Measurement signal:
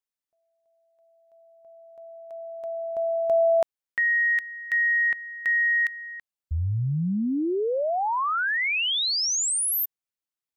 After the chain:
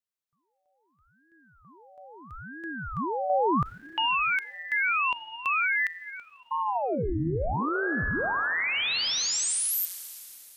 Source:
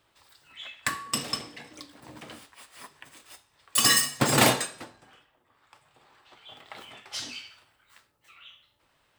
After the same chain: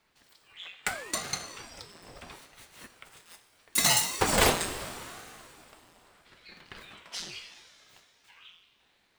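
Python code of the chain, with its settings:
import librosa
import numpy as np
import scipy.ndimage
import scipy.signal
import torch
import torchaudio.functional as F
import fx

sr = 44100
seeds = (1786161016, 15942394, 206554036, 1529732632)

y = fx.rev_schroeder(x, sr, rt60_s=3.0, comb_ms=29, drr_db=10.0)
y = fx.ring_lfo(y, sr, carrier_hz=540.0, swing_pct=85, hz=0.76)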